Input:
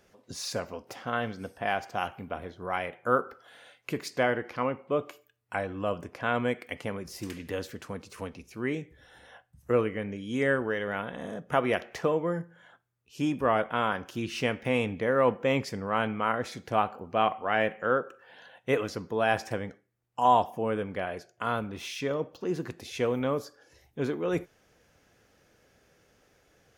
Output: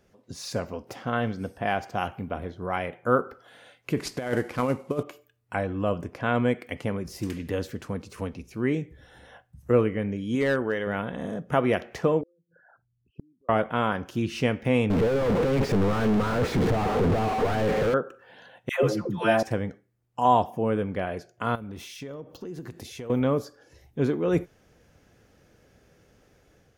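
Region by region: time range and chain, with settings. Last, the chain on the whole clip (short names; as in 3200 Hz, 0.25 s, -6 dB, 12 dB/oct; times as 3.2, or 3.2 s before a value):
3.97–5.03 CVSD 64 kbps + negative-ratio compressor -29 dBFS, ratio -0.5
10.35–10.87 low shelf 200 Hz -7.5 dB + hard clip -21 dBFS
12.21–13.49 formant sharpening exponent 3 + LPF 1500 Hz 24 dB/oct + flipped gate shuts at -30 dBFS, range -40 dB
14.9–17.94 infinite clipping + LPF 1500 Hz 6 dB/oct + bell 440 Hz +7.5 dB 0.23 oct
18.69–19.43 high shelf 9400 Hz +4.5 dB + comb 5.7 ms, depth 64% + dispersion lows, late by 0.143 s, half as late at 670 Hz
21.55–23.1 high shelf 7500 Hz +8.5 dB + notch 2500 Hz, Q 25 + compressor, threshold -40 dBFS
whole clip: low shelf 410 Hz +8.5 dB; AGC gain up to 5 dB; gain -4.5 dB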